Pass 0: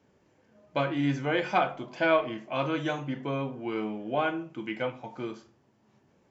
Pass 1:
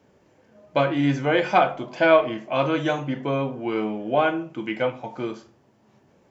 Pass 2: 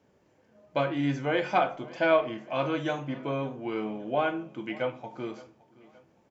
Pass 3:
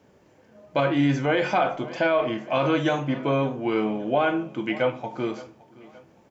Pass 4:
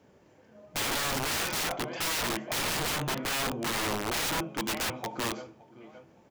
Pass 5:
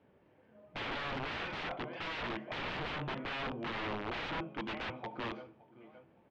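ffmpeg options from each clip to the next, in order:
-af "equalizer=f=590:w=1.5:g=3,volume=1.88"
-af "aecho=1:1:567|1134|1701:0.0841|0.0362|0.0156,volume=0.473"
-af "alimiter=limit=0.0944:level=0:latency=1:release=37,volume=2.51"
-af "aeval=exprs='(mod(14.1*val(0)+1,2)-1)/14.1':c=same,volume=0.75"
-af "lowpass=f=3300:w=0.5412,lowpass=f=3300:w=1.3066,volume=0.473"

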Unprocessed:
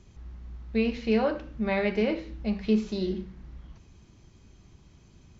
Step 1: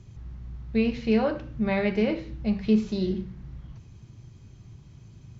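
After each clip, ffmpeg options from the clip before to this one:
-af "equalizer=f=120:w=1.8:g=14.5"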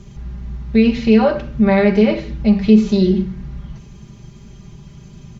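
-filter_complex "[0:a]aecho=1:1:5:0.79,asplit=2[s0][s1];[s1]alimiter=limit=0.126:level=0:latency=1:release=117,volume=1.19[s2];[s0][s2]amix=inputs=2:normalize=0,volume=1.5"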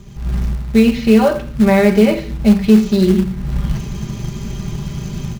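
-filter_complex "[0:a]dynaudnorm=f=190:g=3:m=5.31,asplit=2[s0][s1];[s1]acrusher=bits=3:mode=log:mix=0:aa=0.000001,volume=0.668[s2];[s0][s2]amix=inputs=2:normalize=0,volume=0.596"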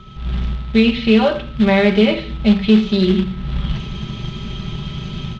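-af "lowpass=f=3400:t=q:w=3.8,aeval=exprs='val(0)+0.00891*sin(2*PI*1300*n/s)':c=same,volume=0.75"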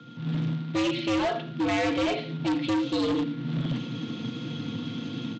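-af "afreqshift=100,aresample=16000,asoftclip=type=hard:threshold=0.168,aresample=44100,volume=0.422"

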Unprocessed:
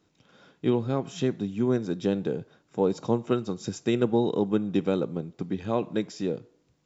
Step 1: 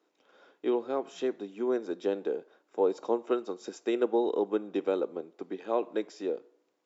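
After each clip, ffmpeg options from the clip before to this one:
-af "highpass=f=340:w=0.5412,highpass=f=340:w=1.3066,highshelf=f=2300:g=-9.5"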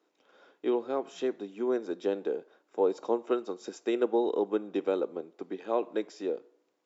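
-af anull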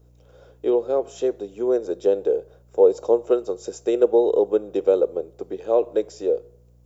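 -af "crystalizer=i=1.5:c=0,aeval=exprs='val(0)+0.00112*(sin(2*PI*60*n/s)+sin(2*PI*2*60*n/s)/2+sin(2*PI*3*60*n/s)/3+sin(2*PI*4*60*n/s)/4+sin(2*PI*5*60*n/s)/5)':c=same,equalizer=f=125:t=o:w=1:g=5,equalizer=f=250:t=o:w=1:g=-9,equalizer=f=500:t=o:w=1:g=10,equalizer=f=1000:t=o:w=1:g=-5,equalizer=f=2000:t=o:w=1:g=-8,equalizer=f=4000:t=o:w=1:g=-5,volume=1.88"

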